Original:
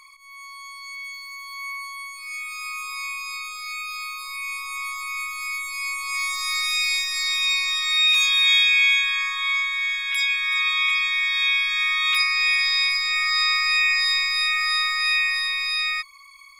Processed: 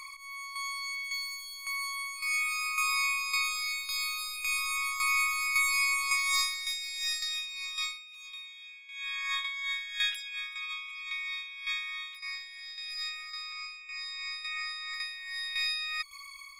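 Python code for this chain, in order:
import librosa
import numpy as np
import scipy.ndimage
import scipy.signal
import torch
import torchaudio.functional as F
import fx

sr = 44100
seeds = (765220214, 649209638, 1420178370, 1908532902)

y = fx.steep_lowpass(x, sr, hz=9900.0, slope=96, at=(13.52, 14.94))
y = fx.over_compress(y, sr, threshold_db=-28.0, ratio=-0.5)
y = fx.tremolo_shape(y, sr, shape='saw_down', hz=1.8, depth_pct=60)
y = fx.notch_cascade(y, sr, direction='falling', hz=0.35)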